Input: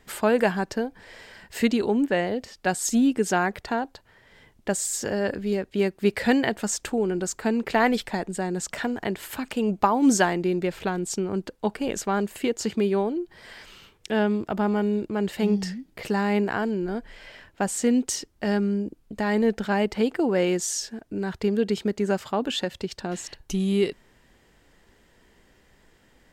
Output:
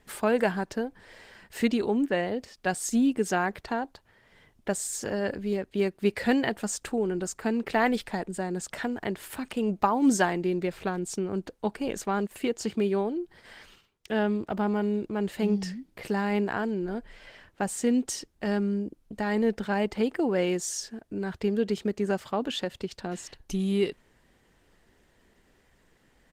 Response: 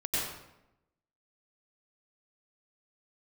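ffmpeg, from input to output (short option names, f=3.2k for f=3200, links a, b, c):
-filter_complex "[0:a]aresample=32000,aresample=44100,asettb=1/sr,asplit=3[a][b][c];[a]atrim=end=12.274[d];[b]atrim=start=12.27:end=14.6,asetpts=PTS-STARTPTS,afade=t=in:d=0.004:c=qsin,afade=t=out:st=2.326:d=0.004:c=qsin,agate=range=-14dB:threshold=-47dB:ratio=16:detection=peak[e];[c]atrim=start=14.596[f];[d][e]acrossfade=d=0.004:c1=hsin:c2=qsin[g];[g][f]acrossfade=d=0.004:c1=qsin:c2=hsin,volume=-3dB" -ar 48000 -c:a libopus -b:a 20k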